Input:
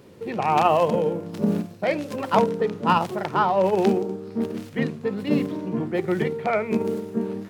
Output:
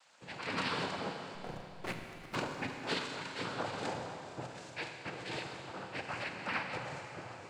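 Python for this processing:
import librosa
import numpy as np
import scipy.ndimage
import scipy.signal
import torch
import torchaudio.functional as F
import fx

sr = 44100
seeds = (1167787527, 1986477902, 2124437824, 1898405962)

y = fx.spec_gate(x, sr, threshold_db=-15, keep='weak')
y = fx.noise_vocoder(y, sr, seeds[0], bands=8)
y = fx.backlash(y, sr, play_db=-28.0, at=(1.34, 2.36))
y = fx.rev_schroeder(y, sr, rt60_s=3.0, comb_ms=33, drr_db=4.0)
y = y * 10.0 ** (-4.5 / 20.0)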